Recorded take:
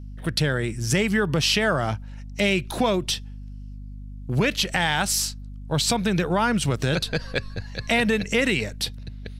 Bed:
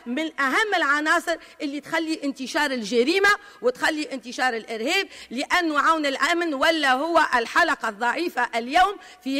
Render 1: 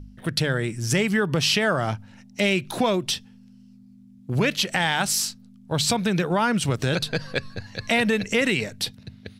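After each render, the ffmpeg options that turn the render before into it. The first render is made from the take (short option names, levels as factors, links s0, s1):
-af "bandreject=f=50:t=h:w=4,bandreject=f=100:t=h:w=4,bandreject=f=150:t=h:w=4"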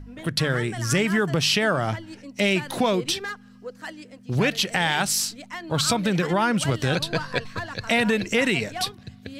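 -filter_complex "[1:a]volume=0.178[s0];[0:a][s0]amix=inputs=2:normalize=0"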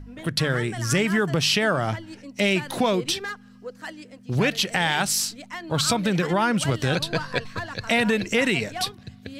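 -af anull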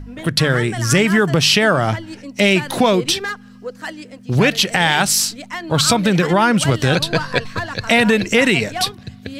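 -af "volume=2.37,alimiter=limit=0.891:level=0:latency=1"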